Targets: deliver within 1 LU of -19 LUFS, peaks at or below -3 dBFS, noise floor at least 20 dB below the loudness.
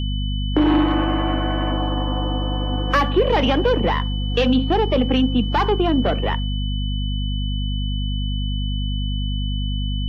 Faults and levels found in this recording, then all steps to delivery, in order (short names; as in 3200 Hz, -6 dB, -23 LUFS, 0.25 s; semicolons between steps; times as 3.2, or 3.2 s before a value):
hum 50 Hz; harmonics up to 250 Hz; hum level -20 dBFS; steady tone 3000 Hz; tone level -32 dBFS; loudness -21.0 LUFS; peak -6.0 dBFS; loudness target -19.0 LUFS
-> de-hum 50 Hz, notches 5; notch 3000 Hz, Q 30; gain +2 dB